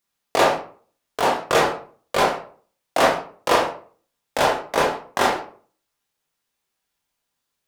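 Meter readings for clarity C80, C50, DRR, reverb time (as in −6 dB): 11.0 dB, 5.5 dB, −3.0 dB, 0.45 s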